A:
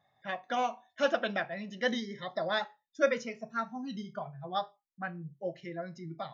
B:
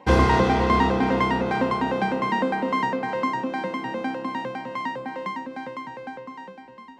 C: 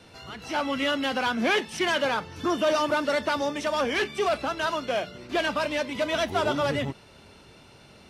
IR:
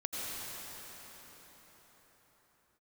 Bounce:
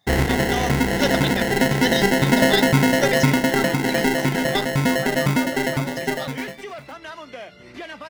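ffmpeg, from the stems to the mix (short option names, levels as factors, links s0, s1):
-filter_complex "[0:a]highshelf=f=2900:t=q:w=1.5:g=11,volume=1.41[s0];[1:a]agate=range=0.0224:threshold=0.02:ratio=3:detection=peak,dynaudnorm=f=630:g=3:m=5.31,acrusher=samples=37:mix=1:aa=0.000001,volume=0.75[s1];[2:a]acompressor=threshold=0.0141:ratio=3,adelay=2450,volume=1[s2];[s0][s1][s2]amix=inputs=3:normalize=0,equalizer=f=2000:w=5:g=9.5"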